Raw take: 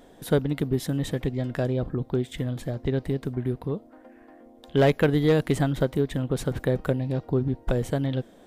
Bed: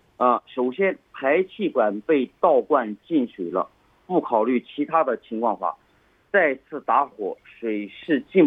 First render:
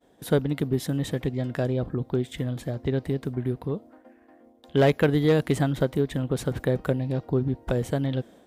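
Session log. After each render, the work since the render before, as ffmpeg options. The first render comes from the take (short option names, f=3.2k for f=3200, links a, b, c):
-af "agate=range=-33dB:threshold=-45dB:ratio=3:detection=peak,highpass=49"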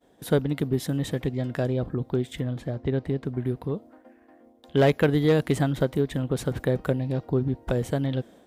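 -filter_complex "[0:a]asettb=1/sr,asplit=3[a][b][c];[a]atrim=end=2.404[d];[b]atrim=start=2.4:end=3.35,asetpts=PTS-STARTPTS,afade=t=in:d=0.004:c=qsin,afade=t=out:st=0.946:d=0.004:c=qsin,aemphasis=mode=reproduction:type=50kf[e];[c]atrim=start=3.346[f];[d][e]acrossfade=d=0.004:c1=hsin:c2=qsin[g];[g][f]acrossfade=d=0.004:c1=qsin:c2=hsin"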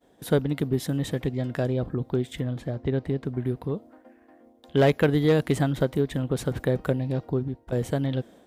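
-filter_complex "[0:a]asplit=2[a][b];[a]atrim=end=7.72,asetpts=PTS-STARTPTS,afade=t=out:st=7.23:d=0.49:silence=0.211349[c];[b]atrim=start=7.72,asetpts=PTS-STARTPTS,afade=t=in:d=0.004:c=hsin:silence=0.211349[d];[c][d]concat=n=2:v=0:a=1"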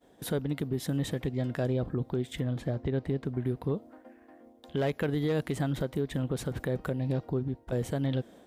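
-af "alimiter=limit=-21.5dB:level=0:latency=1:release=226"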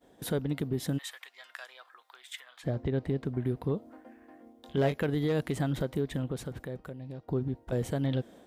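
-filter_complex "[0:a]asplit=3[a][b][c];[a]afade=t=out:st=0.97:d=0.02[d];[b]highpass=f=1.1k:w=0.5412,highpass=f=1.1k:w=1.3066,afade=t=in:st=0.97:d=0.02,afade=t=out:st=2.63:d=0.02[e];[c]afade=t=in:st=2.63:d=0.02[f];[d][e][f]amix=inputs=3:normalize=0,asettb=1/sr,asplit=3[g][h][i];[g]atrim=end=3.844[j];[h]atrim=start=3.84:end=4.96,asetpts=PTS-STARTPTS,afade=t=in:d=0.004:c=qsin,afade=t=out:st=1.116:d=0.004:c=qsin,asplit=2[k][l];[l]adelay=22,volume=-6.5dB[m];[k][m]amix=inputs=2:normalize=0,atrim=end_sample=49392[n];[i]atrim=start=4.956[o];[j][n]acrossfade=d=0.004:c1=hsin:c2=qsin[p];[p][o]acrossfade=d=0.004:c1=qsin:c2=hsin,asplit=2[q][r];[q]atrim=end=7.28,asetpts=PTS-STARTPTS,afade=t=out:st=6.05:d=1.23:c=qua:silence=0.237137[s];[r]atrim=start=7.28,asetpts=PTS-STARTPTS,afade=t=in:d=0.004:c=hsin:silence=0.237137[t];[s][t]concat=n=2:v=0:a=1"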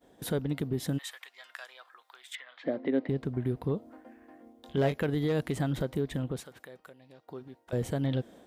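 -filter_complex "[0:a]asettb=1/sr,asplit=3[a][b][c];[a]atrim=end=2.354[d];[b]atrim=start=2.35:end=3.09,asetpts=PTS-STARTPTS,afade=t=in:d=0.004:c=qsin,afade=t=out:st=0.736:d=0.004:c=qsin,highpass=f=230:w=0.5412,highpass=f=230:w=1.3066,equalizer=f=270:t=q:w=4:g=8,equalizer=f=560:t=q:w=4:g=6,equalizer=f=2k:t=q:w=4:g=7,lowpass=f=4.3k:w=0.5412,lowpass=f=4.3k:w=1.3066[e];[c]atrim=start=3.086[f];[d][e]acrossfade=d=0.004:c1=hsin:c2=qsin[g];[g][f]acrossfade=d=0.004:c1=qsin:c2=hsin,asettb=1/sr,asplit=3[h][i][j];[h]atrim=end=6.404[k];[i]atrim=start=6.4:end=7.73,asetpts=PTS-STARTPTS,afade=t=in:d=0.004:c=qsin,afade=t=out:st=1.326:d=0.004:c=qsin,highpass=f=1.2k:p=1[l];[j]atrim=start=7.726[m];[k][l]acrossfade=d=0.004:c1=hsin:c2=qsin[n];[n][m]acrossfade=d=0.004:c1=qsin:c2=hsin"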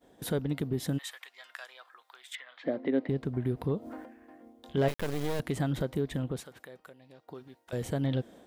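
-filter_complex "[0:a]asplit=3[a][b][c];[a]afade=t=out:st=3.32:d=0.02[d];[b]acompressor=mode=upward:threshold=-31dB:ratio=2.5:attack=3.2:release=140:knee=2.83:detection=peak,afade=t=in:st=3.32:d=0.02,afade=t=out:st=4.04:d=0.02[e];[c]afade=t=in:st=4.04:d=0.02[f];[d][e][f]amix=inputs=3:normalize=0,asettb=1/sr,asplit=3[g][h][i];[g]atrim=end=4.884[j];[h]atrim=start=4.88:end=5.4,asetpts=PTS-STARTPTS,afade=t=in:d=0.004:c=qsin,afade=t=out:st=0.516:d=0.004:c=qsin,acrusher=bits=4:dc=4:mix=0:aa=0.000001[k];[i]atrim=start=5.396[l];[j][k]acrossfade=d=0.004:c1=hsin:c2=qsin[m];[m][l]acrossfade=d=0.004:c1=qsin:c2=hsin,asettb=1/sr,asplit=3[n][o][p];[n]atrim=end=7.344[q];[o]atrim=start=7.34:end=7.85,asetpts=PTS-STARTPTS,afade=t=in:d=0.004:c=qsin,afade=t=out:st=0.506:d=0.004:c=qsin,tiltshelf=f=1.4k:g=-4[r];[p]atrim=start=7.846[s];[q][r]acrossfade=d=0.004:c1=hsin:c2=qsin[t];[t][s]acrossfade=d=0.004:c1=qsin:c2=hsin"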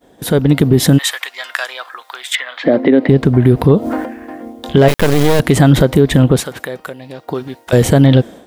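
-af "dynaudnorm=f=170:g=5:m=12dB,alimiter=level_in=12dB:limit=-1dB:release=50:level=0:latency=1"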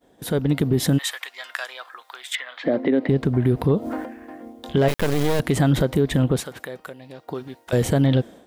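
-af "volume=-9.5dB"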